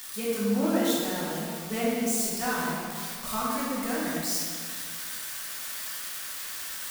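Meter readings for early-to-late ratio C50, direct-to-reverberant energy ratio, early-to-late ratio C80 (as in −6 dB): −2.0 dB, −8.5 dB, 0.0 dB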